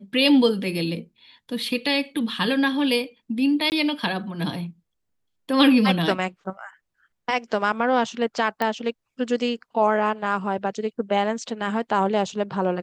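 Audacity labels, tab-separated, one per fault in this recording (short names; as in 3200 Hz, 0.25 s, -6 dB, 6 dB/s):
3.700000	3.720000	gap 19 ms
8.620000	8.620000	pop -12 dBFS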